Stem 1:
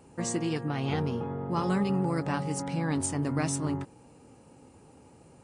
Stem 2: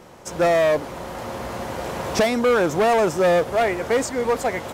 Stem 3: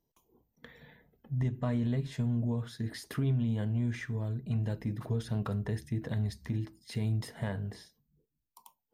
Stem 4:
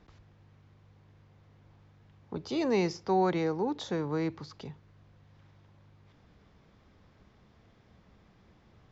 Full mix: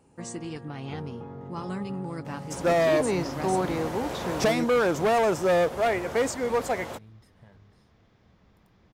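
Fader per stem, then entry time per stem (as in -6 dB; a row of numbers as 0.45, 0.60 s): -6.0, -4.5, -20.0, 0.0 dB; 0.00, 2.25, 0.00, 0.35 s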